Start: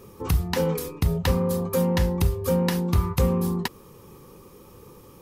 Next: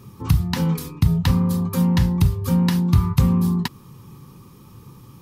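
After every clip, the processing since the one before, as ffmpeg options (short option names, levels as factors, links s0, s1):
-af "equalizer=f=125:t=o:w=1:g=12,equalizer=f=250:t=o:w=1:g=5,equalizer=f=500:t=o:w=1:g=-11,equalizer=f=1000:t=o:w=1:g=4,equalizer=f=4000:t=o:w=1:g=4,volume=0.891"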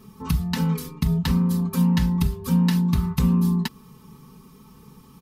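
-af "aecho=1:1:4.6:0.86,volume=0.596"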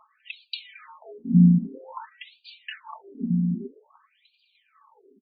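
-filter_complex "[0:a]aphaser=in_gain=1:out_gain=1:delay=2.7:decay=0.59:speed=0.69:type=triangular,asplit=4[s0][s1][s2][s3];[s1]adelay=299,afreqshift=35,volume=0.112[s4];[s2]adelay=598,afreqshift=70,volume=0.0347[s5];[s3]adelay=897,afreqshift=105,volume=0.0108[s6];[s0][s4][s5][s6]amix=inputs=4:normalize=0,afftfilt=real='re*between(b*sr/1024,220*pow(3400/220,0.5+0.5*sin(2*PI*0.51*pts/sr))/1.41,220*pow(3400/220,0.5+0.5*sin(2*PI*0.51*pts/sr))*1.41)':imag='im*between(b*sr/1024,220*pow(3400/220,0.5+0.5*sin(2*PI*0.51*pts/sr))/1.41,220*pow(3400/220,0.5+0.5*sin(2*PI*0.51*pts/sr))*1.41)':win_size=1024:overlap=0.75"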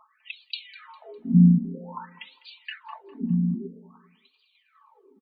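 -af "aecho=1:1:202|404|606:0.112|0.0404|0.0145"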